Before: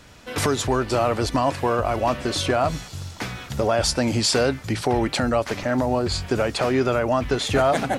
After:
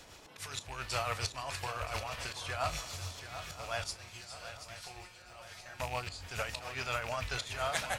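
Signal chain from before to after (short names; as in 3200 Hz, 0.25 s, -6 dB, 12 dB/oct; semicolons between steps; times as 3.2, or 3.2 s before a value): rattling part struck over -24 dBFS, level -24 dBFS; passive tone stack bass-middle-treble 10-0-10; 1.64–2.16 negative-ratio compressor -37 dBFS, ratio -1; auto swell 0.316 s; tremolo 7.2 Hz, depth 50%; band noise 110–1100 Hz -60 dBFS; 3.96–5.8 resonator 180 Hz, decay 0.38 s, harmonics all, mix 90%; swung echo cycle 0.976 s, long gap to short 3:1, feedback 42%, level -11 dB; reverb, pre-delay 5 ms, DRR 11.5 dB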